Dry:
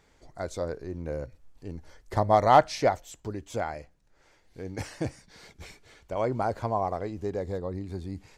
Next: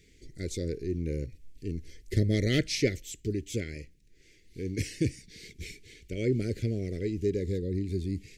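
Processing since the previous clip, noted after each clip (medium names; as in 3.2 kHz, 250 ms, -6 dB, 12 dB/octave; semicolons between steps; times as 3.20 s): elliptic band-stop 410–2100 Hz, stop band 80 dB; trim +5 dB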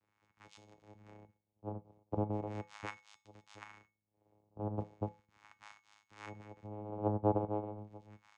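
wah-wah 0.38 Hz 350–3200 Hz, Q 2.7; vocoder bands 4, saw 105 Hz; feedback comb 170 Hz, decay 0.32 s, harmonics odd, mix 70%; trim +10.5 dB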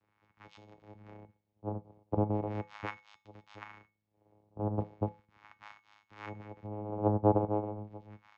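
distance through air 180 m; trim +5.5 dB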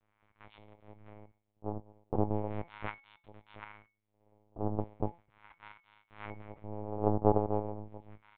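LPC vocoder at 8 kHz pitch kept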